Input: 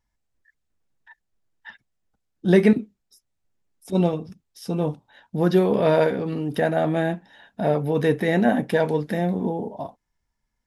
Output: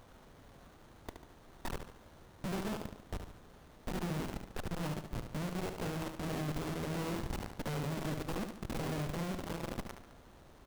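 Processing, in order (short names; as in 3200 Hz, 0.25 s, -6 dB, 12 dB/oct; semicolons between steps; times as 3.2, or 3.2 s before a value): bin magnitudes rounded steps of 30 dB; low shelf 110 Hz -2.5 dB; reverse; compressor 8:1, threshold -30 dBFS, peak gain reduction 18 dB; reverse; phaser stages 6, 1.6 Hz, lowest notch 530–1100 Hz; Schmitt trigger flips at -51 dBFS; companded quantiser 2-bit; added noise pink -50 dBFS; on a send: feedback echo 72 ms, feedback 48%, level -7 dB; on the sum: running maximum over 17 samples; gain -6 dB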